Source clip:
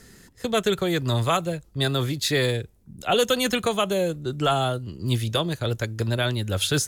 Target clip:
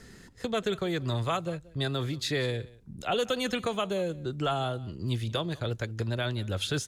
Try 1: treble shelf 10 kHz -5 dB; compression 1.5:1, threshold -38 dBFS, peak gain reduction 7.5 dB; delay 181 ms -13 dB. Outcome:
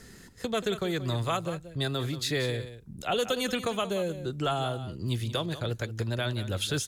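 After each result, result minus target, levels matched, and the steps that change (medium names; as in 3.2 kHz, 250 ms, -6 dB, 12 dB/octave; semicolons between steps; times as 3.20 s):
echo-to-direct +9 dB; 8 kHz band +3.0 dB
change: delay 181 ms -22 dB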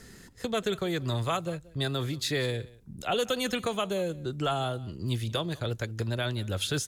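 8 kHz band +3.0 dB
change: treble shelf 10 kHz -16 dB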